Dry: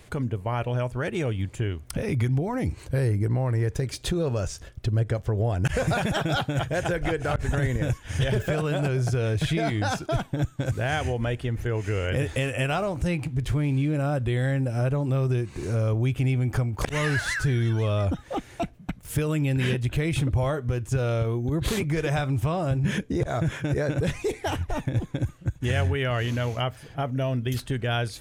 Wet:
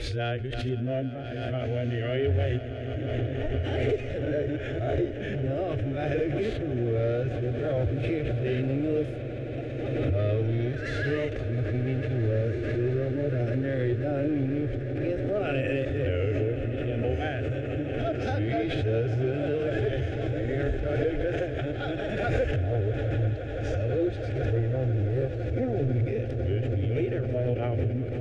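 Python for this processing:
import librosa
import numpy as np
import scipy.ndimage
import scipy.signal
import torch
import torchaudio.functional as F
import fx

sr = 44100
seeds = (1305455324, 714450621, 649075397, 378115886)

p1 = np.flip(x).copy()
p2 = fx.hpss(p1, sr, part='percussive', gain_db=-16)
p3 = np.clip(p2, -10.0 ** (-20.5 / 20.0), 10.0 ** (-20.5 / 20.0))
p4 = scipy.signal.sosfilt(scipy.signal.butter(2, 2500.0, 'lowpass', fs=sr, output='sos'), p3)
p5 = fx.fixed_phaser(p4, sr, hz=410.0, stages=4)
p6 = p5 + fx.echo_swell(p5, sr, ms=166, loudest=8, wet_db=-17, dry=0)
p7 = fx.pre_swell(p6, sr, db_per_s=24.0)
y = p7 * 10.0 ** (3.5 / 20.0)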